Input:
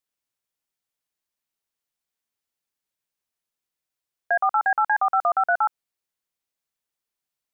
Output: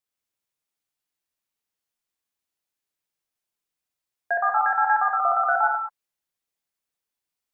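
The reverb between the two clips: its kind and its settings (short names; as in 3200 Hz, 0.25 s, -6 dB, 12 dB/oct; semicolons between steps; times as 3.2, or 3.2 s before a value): non-linear reverb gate 0.23 s flat, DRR 0 dB; gain -3 dB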